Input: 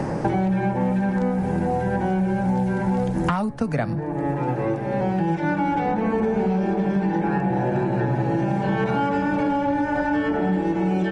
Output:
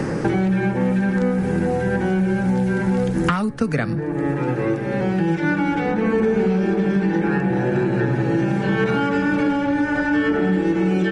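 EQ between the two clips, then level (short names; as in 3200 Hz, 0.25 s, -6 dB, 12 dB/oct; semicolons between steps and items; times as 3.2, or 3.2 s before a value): low shelf 240 Hz -5.5 dB; band shelf 770 Hz -9 dB 1 oct; +6.0 dB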